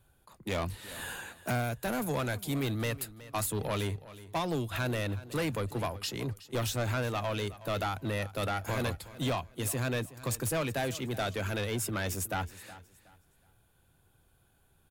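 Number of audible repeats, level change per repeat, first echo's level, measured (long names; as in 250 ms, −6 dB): 2, −11.0 dB, −17.0 dB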